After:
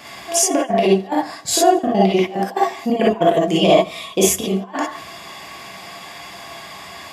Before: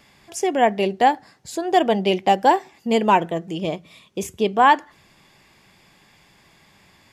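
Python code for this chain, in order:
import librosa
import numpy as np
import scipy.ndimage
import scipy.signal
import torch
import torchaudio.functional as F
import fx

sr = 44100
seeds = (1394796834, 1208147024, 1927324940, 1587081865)

p1 = fx.level_steps(x, sr, step_db=19)
p2 = x + (p1 * 10.0 ** (0.0 / 20.0))
p3 = fx.low_shelf(p2, sr, hz=380.0, db=-6.5)
p4 = fx.small_body(p3, sr, hz=(690.0, 1100.0), ring_ms=60, db=11)
p5 = fx.over_compress(p4, sr, threshold_db=-23.0, ratio=-0.5)
p6 = scipy.signal.sosfilt(scipy.signal.butter(2, 71.0, 'highpass', fs=sr, output='sos'), p5)
p7 = p6 + fx.echo_feedback(p6, sr, ms=83, feedback_pct=38, wet_db=-21.0, dry=0)
y = fx.rev_gated(p7, sr, seeds[0], gate_ms=80, shape='rising', drr_db=-4.0)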